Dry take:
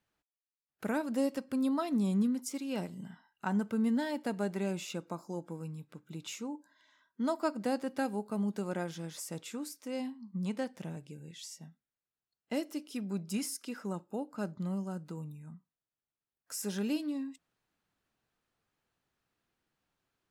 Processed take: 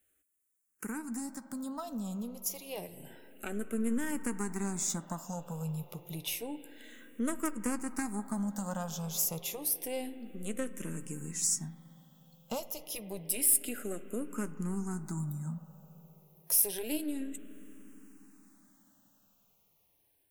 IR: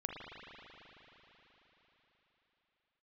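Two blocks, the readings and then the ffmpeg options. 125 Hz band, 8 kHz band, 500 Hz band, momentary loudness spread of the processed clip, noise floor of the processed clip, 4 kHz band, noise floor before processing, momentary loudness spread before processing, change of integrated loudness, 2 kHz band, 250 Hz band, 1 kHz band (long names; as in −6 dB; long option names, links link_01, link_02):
+0.5 dB, +12.5 dB, −3.0 dB, 16 LU, −73 dBFS, +2.0 dB, below −85 dBFS, 15 LU, +1.5 dB, −0.5 dB, −3.0 dB, −2.5 dB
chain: -filter_complex "[0:a]dynaudnorm=framelen=880:gausssize=7:maxgain=11.5dB,aeval=exprs='0.447*(cos(1*acos(clip(val(0)/0.447,-1,1)))-cos(1*PI/2))+0.178*(cos(4*acos(clip(val(0)/0.447,-1,1)))-cos(4*PI/2))+0.1*(cos(6*acos(clip(val(0)/0.447,-1,1)))-cos(6*PI/2))+0.0316*(cos(8*acos(clip(val(0)/0.447,-1,1)))-cos(8*PI/2))':channel_layout=same,acompressor=threshold=-44dB:ratio=2,aexciter=amount=5.2:drive=5.7:freq=6400,asplit=2[link_01][link_02];[1:a]atrim=start_sample=2205,asetrate=39690,aresample=44100,adelay=13[link_03];[link_02][link_03]afir=irnorm=-1:irlink=0,volume=-13dB[link_04];[link_01][link_04]amix=inputs=2:normalize=0,asplit=2[link_05][link_06];[link_06]afreqshift=-0.29[link_07];[link_05][link_07]amix=inputs=2:normalize=1,volume=3dB"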